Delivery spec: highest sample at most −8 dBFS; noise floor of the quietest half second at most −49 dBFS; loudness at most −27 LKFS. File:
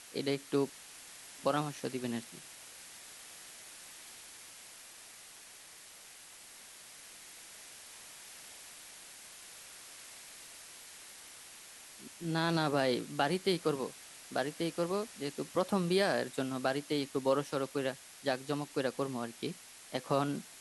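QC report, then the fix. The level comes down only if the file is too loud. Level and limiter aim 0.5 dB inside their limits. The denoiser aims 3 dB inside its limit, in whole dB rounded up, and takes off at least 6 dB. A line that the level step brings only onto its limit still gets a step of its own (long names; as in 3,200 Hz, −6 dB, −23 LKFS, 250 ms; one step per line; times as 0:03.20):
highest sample −16.0 dBFS: in spec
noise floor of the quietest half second −54 dBFS: in spec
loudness −34.5 LKFS: in spec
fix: no processing needed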